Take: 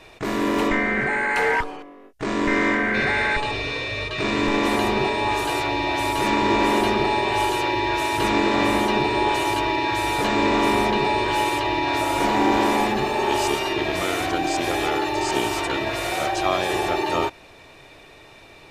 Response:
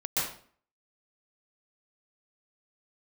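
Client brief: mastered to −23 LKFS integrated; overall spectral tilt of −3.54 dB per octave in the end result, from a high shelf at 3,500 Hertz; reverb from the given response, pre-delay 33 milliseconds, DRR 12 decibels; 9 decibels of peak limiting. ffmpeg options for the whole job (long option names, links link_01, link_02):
-filter_complex "[0:a]highshelf=frequency=3500:gain=3.5,alimiter=limit=-17dB:level=0:latency=1,asplit=2[link_01][link_02];[1:a]atrim=start_sample=2205,adelay=33[link_03];[link_02][link_03]afir=irnorm=-1:irlink=0,volume=-20.5dB[link_04];[link_01][link_04]amix=inputs=2:normalize=0,volume=2dB"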